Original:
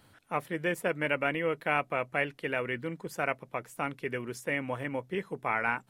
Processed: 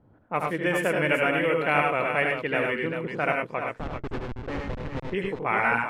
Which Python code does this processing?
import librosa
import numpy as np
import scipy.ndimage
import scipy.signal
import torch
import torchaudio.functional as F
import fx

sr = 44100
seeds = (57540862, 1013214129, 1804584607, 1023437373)

y = fx.schmitt(x, sr, flips_db=-30.5, at=(3.75, 5.1))
y = fx.env_lowpass(y, sr, base_hz=590.0, full_db=-27.0)
y = fx.echo_multitap(y, sr, ms=(75, 101, 119, 391), db=(-5.5, -4.0, -13.0, -8.0))
y = y * librosa.db_to_amplitude(4.0)